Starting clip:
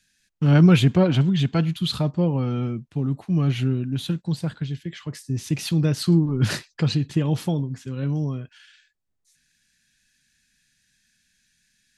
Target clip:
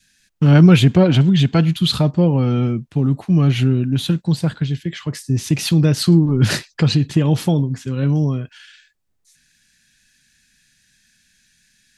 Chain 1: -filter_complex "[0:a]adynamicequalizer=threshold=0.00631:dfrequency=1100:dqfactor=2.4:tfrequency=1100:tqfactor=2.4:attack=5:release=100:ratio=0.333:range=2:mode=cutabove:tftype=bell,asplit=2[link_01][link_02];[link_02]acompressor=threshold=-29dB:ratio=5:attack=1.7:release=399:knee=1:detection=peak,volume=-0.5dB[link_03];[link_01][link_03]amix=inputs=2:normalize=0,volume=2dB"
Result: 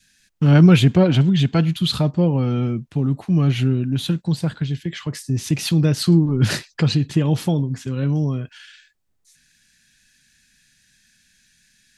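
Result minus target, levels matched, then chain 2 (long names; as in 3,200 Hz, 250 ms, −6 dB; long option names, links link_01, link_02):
downward compressor: peak gain reduction +9 dB
-filter_complex "[0:a]adynamicequalizer=threshold=0.00631:dfrequency=1100:dqfactor=2.4:tfrequency=1100:tqfactor=2.4:attack=5:release=100:ratio=0.333:range=2:mode=cutabove:tftype=bell,asplit=2[link_01][link_02];[link_02]acompressor=threshold=-17.5dB:ratio=5:attack=1.7:release=399:knee=1:detection=peak,volume=-0.5dB[link_03];[link_01][link_03]amix=inputs=2:normalize=0,volume=2dB"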